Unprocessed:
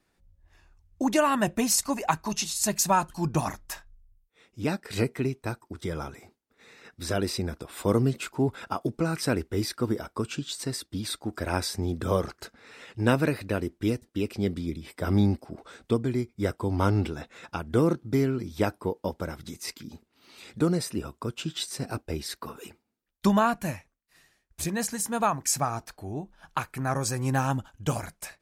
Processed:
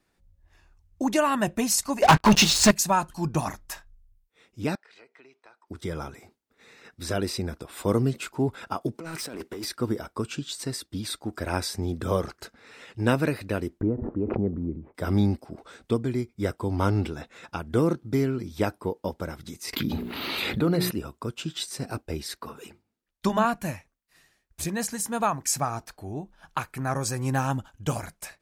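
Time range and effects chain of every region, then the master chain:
2.02–2.71 s: low-pass 3.9 kHz + waveshaping leveller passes 5
4.75–5.68 s: high-pass 720 Hz + compression 3:1, threshold -53 dBFS + distance through air 150 m
8.95–9.65 s: high-pass 200 Hz + compressor with a negative ratio -34 dBFS + hard clipper -30.5 dBFS
13.81–14.95 s: low-pass 1.1 kHz 24 dB/octave + swell ahead of each attack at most 28 dB/s
19.73–20.91 s: high-order bell 6.9 kHz -13 dB 1.1 oct + hum notches 60/120/180/240/300/360/420 Hz + level flattener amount 70%
22.35–23.45 s: treble shelf 11 kHz -6.5 dB + hum notches 50/100/150/200/250/300/350 Hz
whole clip: none

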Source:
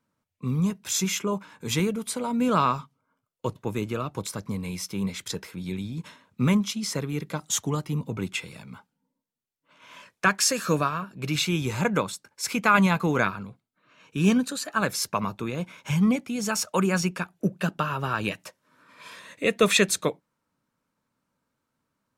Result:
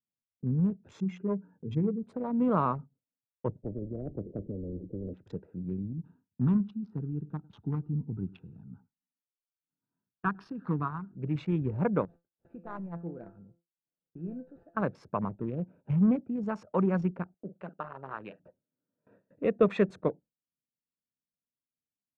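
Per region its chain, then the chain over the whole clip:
1.00–2.03 s: spectral contrast enhancement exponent 1.6 + hum notches 60/120/180/240/300/360/420 Hz
3.62–5.14 s: inverse Chebyshev low-pass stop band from 1.1 kHz, stop band 60 dB + spectrum-flattening compressor 10:1
5.93–11.17 s: static phaser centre 2.1 kHz, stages 6 + delay 103 ms -21 dB
12.05–14.77 s: CVSD coder 32 kbps + dynamic bell 130 Hz, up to -7 dB, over -35 dBFS, Q 0.77 + feedback comb 170 Hz, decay 0.42 s, mix 80%
17.34–18.40 s: high-pass 1.1 kHz 6 dB/octave + doubling 45 ms -12 dB
whole clip: local Wiener filter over 41 samples; gate with hold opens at -48 dBFS; low-pass 1 kHz 12 dB/octave; trim -2 dB

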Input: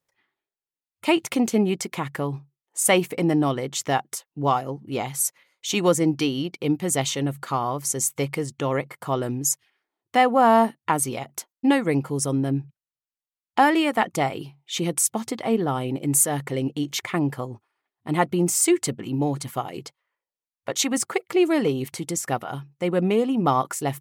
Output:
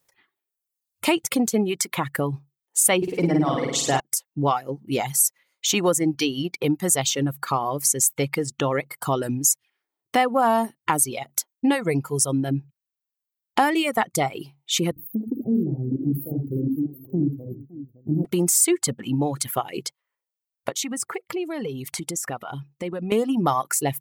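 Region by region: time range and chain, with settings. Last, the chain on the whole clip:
2.97–4.00 s: distance through air 60 m + flutter echo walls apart 9 m, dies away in 1.4 s
14.91–18.25 s: inverse Chebyshev band-stop 1.3–7.7 kHz, stop band 70 dB + multi-tap echo 52/78/365/561 ms -6.5/-4/-15.5/-14.5 dB
20.69–23.12 s: treble shelf 6.7 kHz -5.5 dB + compression 3:1, threshold -36 dBFS
whole clip: reverb removal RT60 1.5 s; treble shelf 6.8 kHz +9 dB; compression 2:1, threshold -30 dBFS; trim +7 dB

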